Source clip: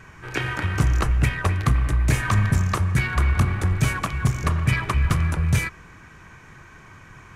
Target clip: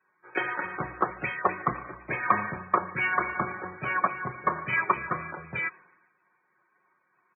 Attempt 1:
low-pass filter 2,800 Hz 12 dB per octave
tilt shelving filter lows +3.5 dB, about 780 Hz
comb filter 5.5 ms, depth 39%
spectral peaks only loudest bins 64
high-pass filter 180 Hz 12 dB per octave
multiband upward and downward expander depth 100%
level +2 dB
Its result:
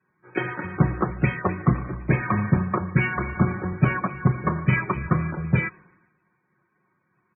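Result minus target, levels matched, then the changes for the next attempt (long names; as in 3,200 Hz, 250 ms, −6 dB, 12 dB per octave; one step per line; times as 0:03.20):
250 Hz band +9.5 dB
change: high-pass filter 570 Hz 12 dB per octave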